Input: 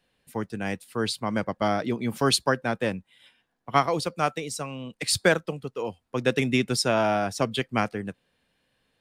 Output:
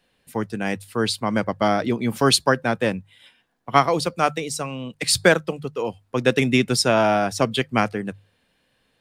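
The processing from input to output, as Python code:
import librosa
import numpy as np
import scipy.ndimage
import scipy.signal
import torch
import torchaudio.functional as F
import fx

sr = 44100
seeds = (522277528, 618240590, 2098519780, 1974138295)

y = fx.hum_notches(x, sr, base_hz=50, count=3)
y = y * librosa.db_to_amplitude(5.0)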